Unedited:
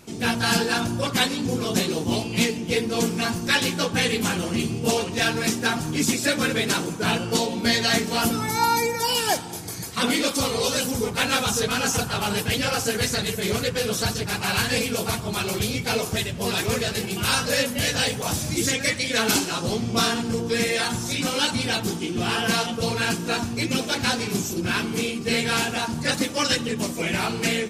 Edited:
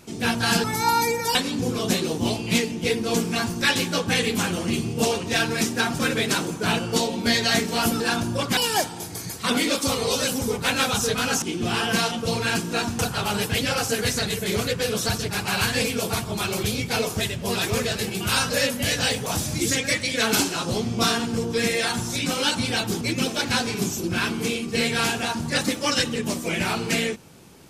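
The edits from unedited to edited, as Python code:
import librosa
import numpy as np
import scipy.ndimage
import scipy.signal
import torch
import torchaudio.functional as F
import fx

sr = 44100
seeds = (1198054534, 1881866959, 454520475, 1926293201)

y = fx.edit(x, sr, fx.swap(start_s=0.64, length_s=0.57, other_s=8.39, other_length_s=0.71),
    fx.cut(start_s=5.85, length_s=0.53),
    fx.move(start_s=21.97, length_s=1.57, to_s=11.95), tone=tone)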